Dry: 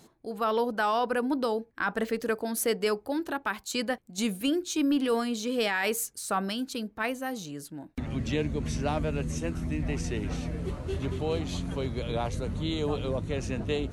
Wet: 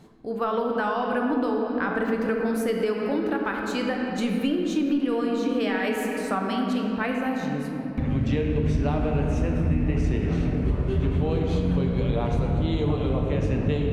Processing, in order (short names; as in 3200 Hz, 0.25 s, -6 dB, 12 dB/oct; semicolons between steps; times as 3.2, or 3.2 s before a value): shoebox room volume 140 m³, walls hard, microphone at 0.4 m; compressor, threshold -25 dBFS, peak gain reduction 7.5 dB; tone controls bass +5 dB, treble -12 dB; gain +3 dB